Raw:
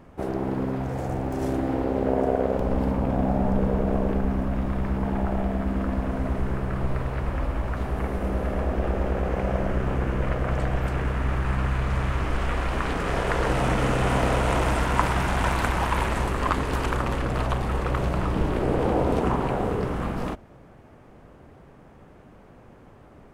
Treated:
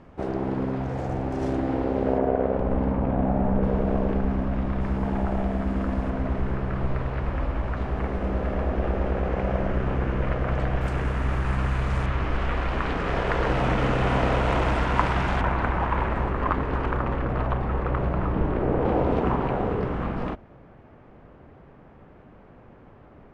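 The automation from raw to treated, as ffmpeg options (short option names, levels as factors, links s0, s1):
-af "asetnsamples=n=441:p=0,asendcmd='2.18 lowpass f 2400;3.63 lowpass f 4600;4.81 lowpass f 7500;6.1 lowpass f 4400;10.81 lowpass f 9300;12.06 lowpass f 4200;15.41 lowpass f 1900;18.85 lowpass f 3000',lowpass=5400"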